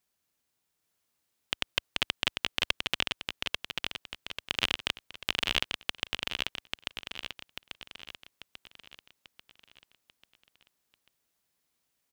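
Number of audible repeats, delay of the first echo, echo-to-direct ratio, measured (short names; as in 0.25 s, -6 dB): 5, 0.841 s, -3.0 dB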